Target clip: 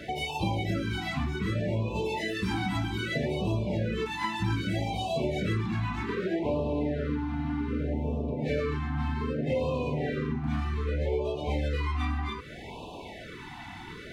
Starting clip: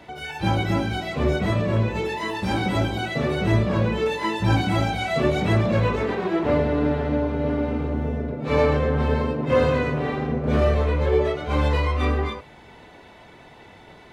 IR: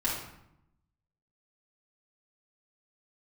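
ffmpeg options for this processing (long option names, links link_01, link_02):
-af "acompressor=threshold=-34dB:ratio=4,afftfilt=real='re*(1-between(b*sr/1024,460*pow(1700/460,0.5+0.5*sin(2*PI*0.64*pts/sr))/1.41,460*pow(1700/460,0.5+0.5*sin(2*PI*0.64*pts/sr))*1.41))':imag='im*(1-between(b*sr/1024,460*pow(1700/460,0.5+0.5*sin(2*PI*0.64*pts/sr))/1.41,460*pow(1700/460,0.5+0.5*sin(2*PI*0.64*pts/sr))*1.41))':win_size=1024:overlap=0.75,volume=5.5dB"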